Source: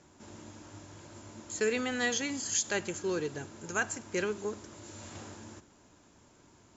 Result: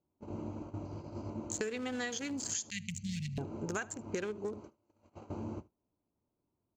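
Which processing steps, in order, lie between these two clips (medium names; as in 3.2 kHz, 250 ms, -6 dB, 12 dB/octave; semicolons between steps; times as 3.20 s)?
local Wiener filter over 25 samples; 4.60–5.30 s: bass shelf 450 Hz -9.5 dB; gate -51 dBFS, range -32 dB; 0.85–1.30 s: peaking EQ 5 kHz +13.5 dB 0.33 oct; 2.70–3.38 s: Chebyshev band-stop 210–2000 Hz, order 5; compression 16:1, threshold -44 dBFS, peak gain reduction 19.5 dB; delay 75 ms -23 dB; trim +10 dB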